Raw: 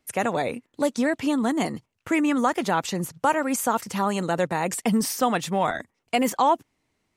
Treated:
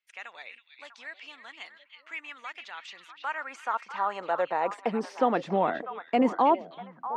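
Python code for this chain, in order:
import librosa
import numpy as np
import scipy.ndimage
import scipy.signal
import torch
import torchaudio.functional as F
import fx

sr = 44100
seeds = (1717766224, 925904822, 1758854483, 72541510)

y = fx.spacing_loss(x, sr, db_at_10k=35)
y = fx.filter_sweep_highpass(y, sr, from_hz=2600.0, to_hz=260.0, start_s=2.79, end_s=5.54, q=1.2)
y = fx.echo_stepped(y, sr, ms=323, hz=3100.0, octaves=-1.4, feedback_pct=70, wet_db=-5.5)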